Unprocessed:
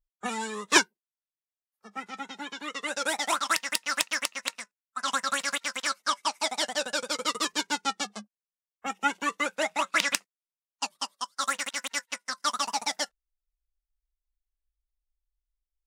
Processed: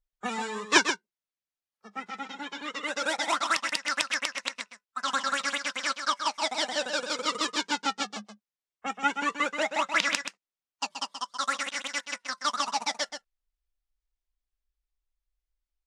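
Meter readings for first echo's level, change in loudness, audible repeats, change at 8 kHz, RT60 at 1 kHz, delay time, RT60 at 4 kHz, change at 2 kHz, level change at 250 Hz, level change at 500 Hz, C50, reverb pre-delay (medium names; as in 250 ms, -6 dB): -8.0 dB, 0.0 dB, 1, -3.5 dB, no reverb, 129 ms, no reverb, +0.5 dB, +0.5 dB, +0.5 dB, no reverb, no reverb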